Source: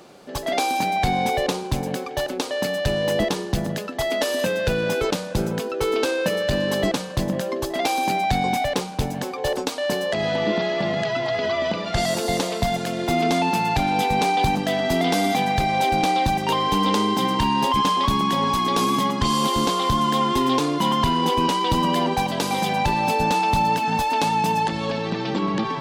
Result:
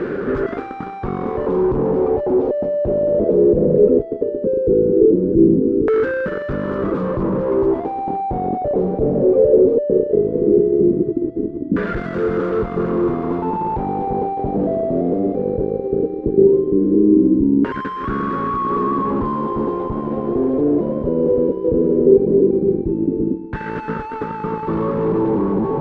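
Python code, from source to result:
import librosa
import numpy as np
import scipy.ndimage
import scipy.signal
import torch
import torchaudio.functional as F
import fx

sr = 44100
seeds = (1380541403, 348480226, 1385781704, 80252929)

y = fx.fuzz(x, sr, gain_db=48.0, gate_db=-53.0)
y = fx.low_shelf_res(y, sr, hz=550.0, db=9.0, q=3.0)
y = fx.filter_lfo_lowpass(y, sr, shape='saw_down', hz=0.17, low_hz=280.0, high_hz=1600.0, q=4.8)
y = y * 10.0 ** (-15.0 / 20.0)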